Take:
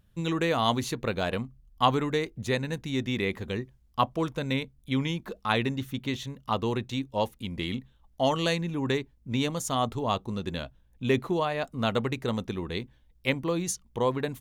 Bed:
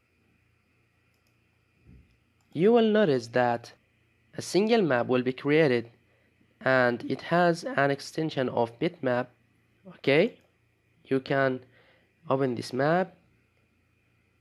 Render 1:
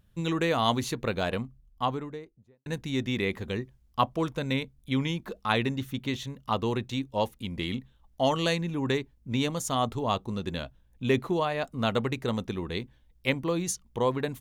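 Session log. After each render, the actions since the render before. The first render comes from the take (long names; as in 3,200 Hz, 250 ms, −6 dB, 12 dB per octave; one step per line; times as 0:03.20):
0:01.22–0:02.66: fade out and dull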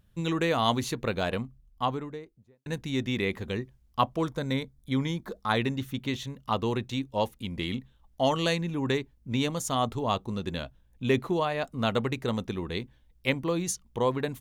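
0:04.25–0:05.57: parametric band 2,700 Hz −13 dB 0.28 octaves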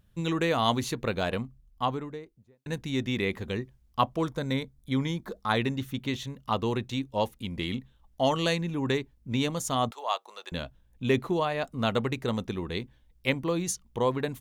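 0:09.91–0:10.52: high-pass filter 620 Hz 24 dB per octave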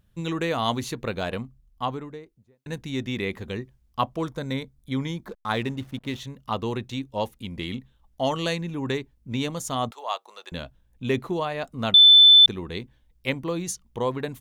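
0:05.28–0:06.21: slack as between gear wheels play −41 dBFS
0:11.94–0:12.46: beep over 3,520 Hz −8.5 dBFS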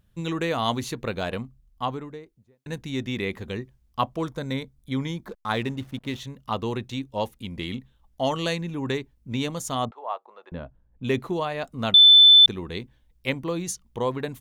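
0:09.85–0:11.04: low-pass filter 1,300 Hz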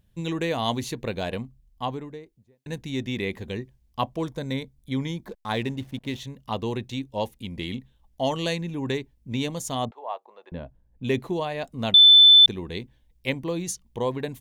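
parametric band 1,300 Hz −9.5 dB 0.4 octaves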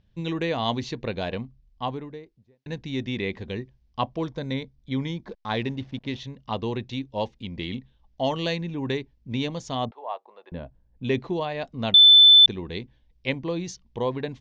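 Butterworth low-pass 5,700 Hz 36 dB per octave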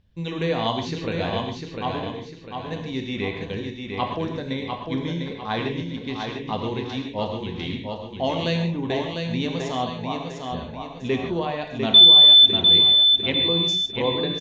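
on a send: repeating echo 700 ms, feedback 41%, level −5 dB
on the sum: reverb whose tail is shaped and stops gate 170 ms flat, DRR 3 dB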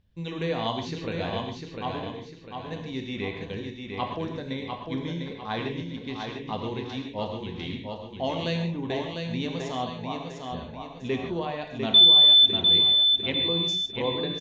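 level −4.5 dB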